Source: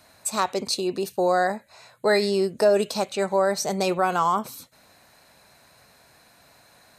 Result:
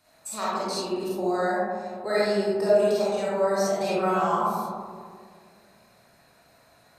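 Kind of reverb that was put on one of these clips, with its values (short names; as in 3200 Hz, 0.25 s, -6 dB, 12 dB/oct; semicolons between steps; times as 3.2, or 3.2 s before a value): digital reverb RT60 2 s, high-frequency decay 0.25×, pre-delay 5 ms, DRR -8.5 dB; gain -11.5 dB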